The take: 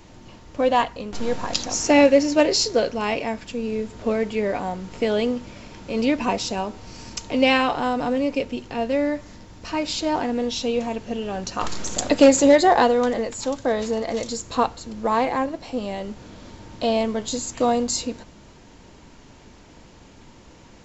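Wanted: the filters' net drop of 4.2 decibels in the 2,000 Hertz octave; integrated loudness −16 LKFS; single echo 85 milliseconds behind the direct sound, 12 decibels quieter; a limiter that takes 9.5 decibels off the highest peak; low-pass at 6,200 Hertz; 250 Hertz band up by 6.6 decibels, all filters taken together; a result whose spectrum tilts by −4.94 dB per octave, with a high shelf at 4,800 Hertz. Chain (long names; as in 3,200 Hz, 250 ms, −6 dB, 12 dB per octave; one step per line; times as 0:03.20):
low-pass filter 6,200 Hz
parametric band 250 Hz +7.5 dB
parametric band 2,000 Hz −4.5 dB
high-shelf EQ 4,800 Hz −4.5 dB
brickwall limiter −9.5 dBFS
single-tap delay 85 ms −12 dB
level +5 dB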